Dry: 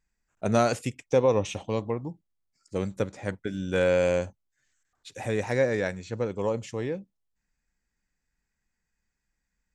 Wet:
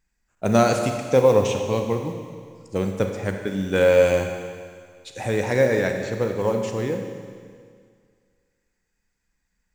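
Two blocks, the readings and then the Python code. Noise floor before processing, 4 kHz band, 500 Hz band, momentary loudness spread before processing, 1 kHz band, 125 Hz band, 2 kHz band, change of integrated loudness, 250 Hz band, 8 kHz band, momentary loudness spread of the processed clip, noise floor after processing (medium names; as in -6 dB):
-81 dBFS, +6.0 dB, +6.5 dB, 12 LU, +5.5 dB, +5.5 dB, +5.5 dB, +6.0 dB, +6.0 dB, +6.0 dB, 18 LU, -75 dBFS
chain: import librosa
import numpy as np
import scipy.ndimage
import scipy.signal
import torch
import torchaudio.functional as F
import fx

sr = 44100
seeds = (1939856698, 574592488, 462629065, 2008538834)

y = fx.mod_noise(x, sr, seeds[0], snr_db=32)
y = fx.rev_schroeder(y, sr, rt60_s=2.0, comb_ms=31, drr_db=4.5)
y = y * librosa.db_to_amplitude(4.5)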